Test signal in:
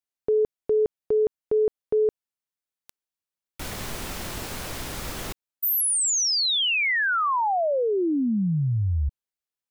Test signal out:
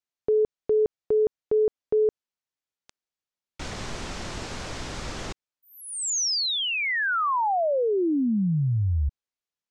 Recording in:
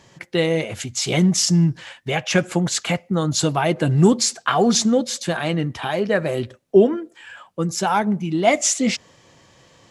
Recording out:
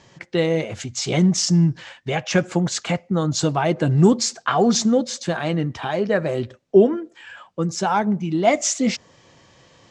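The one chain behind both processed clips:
low-pass filter 7,200 Hz 24 dB per octave
dynamic equaliser 2,900 Hz, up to −4 dB, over −39 dBFS, Q 0.85

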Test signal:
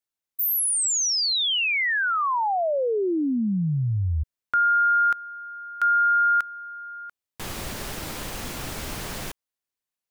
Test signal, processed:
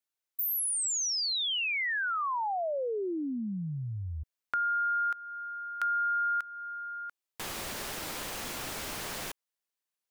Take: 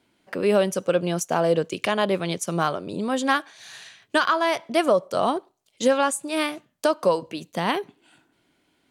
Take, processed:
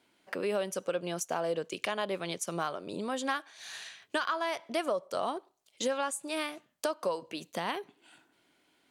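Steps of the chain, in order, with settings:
low-shelf EQ 220 Hz −11.5 dB
downward compressor 2 to 1, threshold −34 dBFS
level −1 dB

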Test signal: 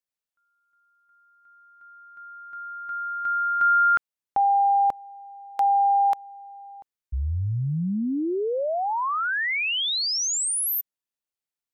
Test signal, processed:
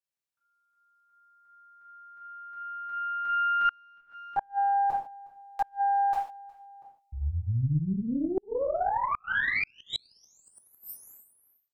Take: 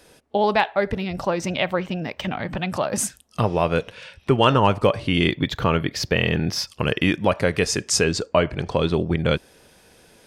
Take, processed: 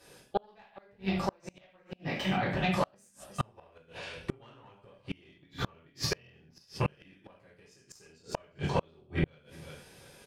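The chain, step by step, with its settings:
reverb whose tail is shaped and stops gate 180 ms falling, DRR −7.5 dB
tube saturation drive 2 dB, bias 0.6
on a send: repeating echo 362 ms, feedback 21%, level −24 dB
on the sum: gate with flip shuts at −9 dBFS, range −35 dB
level −7.5 dB

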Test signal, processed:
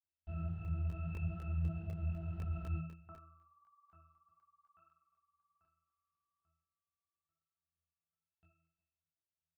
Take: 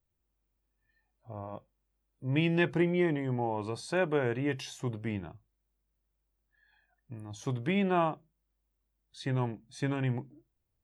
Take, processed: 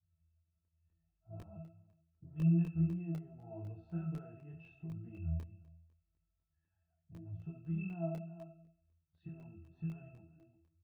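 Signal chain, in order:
parametric band 94 Hz +14.5 dB 1.9 octaves
single-tap delay 356 ms −23.5 dB
downward compressor 5 to 1, threshold −31 dBFS
low-pass filter 3,400 Hz
parametric band 360 Hz −13.5 dB 0.21 octaves
resonances in every octave E, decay 0.69 s
hollow resonant body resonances 2,600 Hz, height 10 dB, ringing for 90 ms
on a send: single-tap delay 75 ms −13 dB
on the sum: regular buffer underruns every 0.25 s, samples 64, zero, from 0:00.65
micro pitch shift up and down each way 28 cents
level +15 dB

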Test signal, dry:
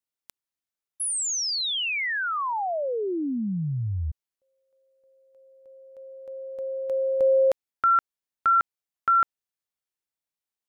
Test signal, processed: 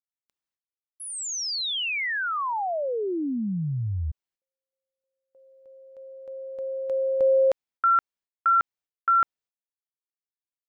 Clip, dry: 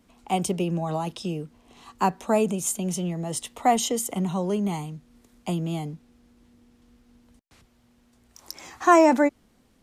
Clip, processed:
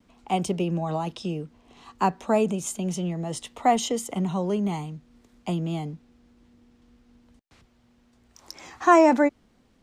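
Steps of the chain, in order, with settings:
noise gate with hold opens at −56 dBFS, hold 198 ms, range −24 dB
parametric band 12,000 Hz −11.5 dB 0.93 octaves

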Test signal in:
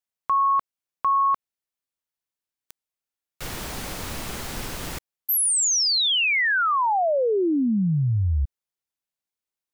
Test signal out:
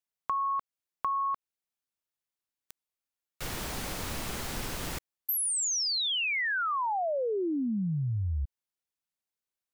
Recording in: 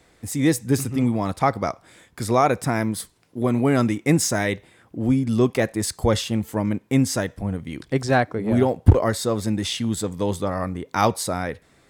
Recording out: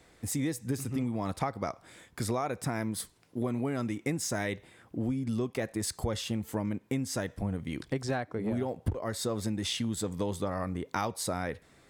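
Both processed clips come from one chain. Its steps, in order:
downward compressor 10 to 1, threshold −25 dBFS
level −3 dB

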